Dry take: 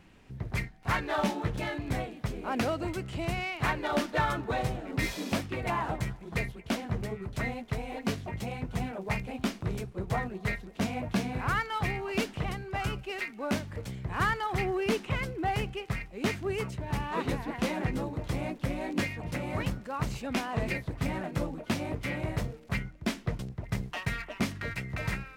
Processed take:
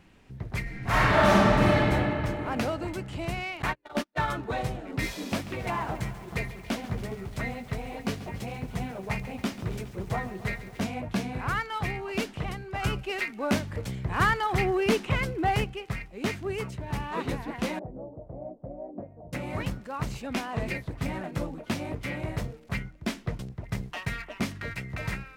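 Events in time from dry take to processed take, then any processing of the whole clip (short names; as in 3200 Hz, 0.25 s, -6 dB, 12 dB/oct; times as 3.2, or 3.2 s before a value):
0.62–1.81 reverb throw, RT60 3 s, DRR -10 dB
3.62–4.28 gate -29 dBFS, range -41 dB
5.09–10.82 lo-fi delay 0.138 s, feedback 80%, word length 8-bit, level -14.5 dB
12.83–15.64 gain +4.5 dB
17.79–19.33 ladder low-pass 710 Hz, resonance 65%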